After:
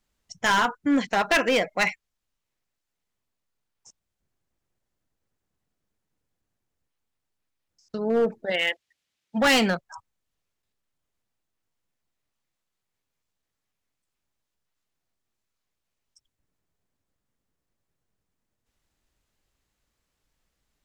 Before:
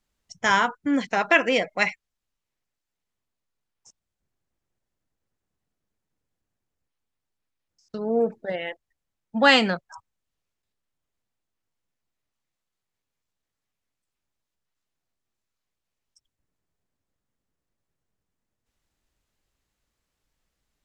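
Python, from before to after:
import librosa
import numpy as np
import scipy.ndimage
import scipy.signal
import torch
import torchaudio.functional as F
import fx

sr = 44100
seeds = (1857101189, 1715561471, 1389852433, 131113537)

y = fx.weighting(x, sr, curve='D', at=(8.5, 9.37), fade=0.02)
y = np.clip(y, -10.0 ** (-17.5 / 20.0), 10.0 ** (-17.5 / 20.0))
y = y * librosa.db_to_amplitude(1.5)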